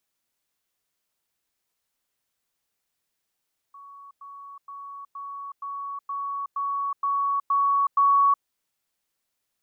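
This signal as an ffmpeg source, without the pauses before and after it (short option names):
-f lavfi -i "aevalsrc='pow(10,(-42.5+3*floor(t/0.47))/20)*sin(2*PI*1120*t)*clip(min(mod(t,0.47),0.37-mod(t,0.47))/0.005,0,1)':d=4.7:s=44100"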